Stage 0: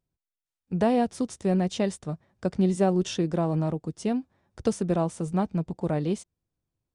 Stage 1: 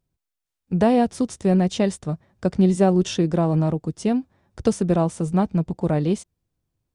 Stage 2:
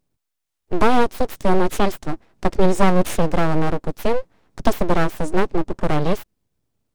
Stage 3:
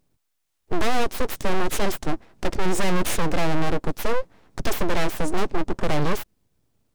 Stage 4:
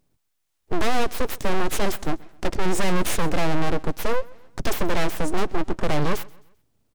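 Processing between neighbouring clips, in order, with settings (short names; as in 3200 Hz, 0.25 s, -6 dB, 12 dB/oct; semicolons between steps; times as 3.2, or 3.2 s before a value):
low shelf 180 Hz +3.5 dB; gain +4.5 dB
full-wave rectifier; gain +5 dB
soft clip -17.5 dBFS, distortion -8 dB; gain +4.5 dB
feedback echo 0.131 s, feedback 39%, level -23 dB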